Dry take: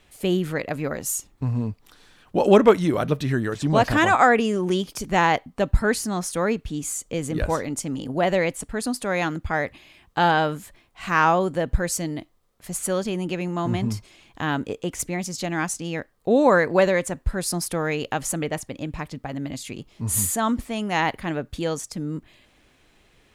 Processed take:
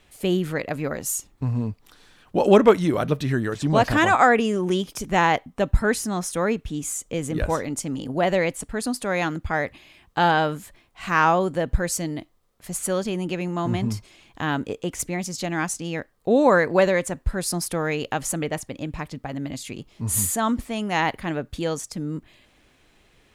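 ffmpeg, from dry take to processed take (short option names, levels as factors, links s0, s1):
-filter_complex "[0:a]asettb=1/sr,asplit=3[s0][s1][s2];[s0]atrim=end=4.334[s3];[s1]atrim=start=4.33:end=7.65,asetpts=PTS-STARTPTS,afade=t=in:d=0.004:c=qsin,afade=t=out:st=3.316:d=0.004:c=qsin,bandreject=f=4500:w=12[s4];[s2]atrim=start=7.646[s5];[s3][s4]acrossfade=d=0.004:c1=hsin:c2=qsin[s6];[s6][s5]acrossfade=d=0.004:c1=qsin:c2=hsin"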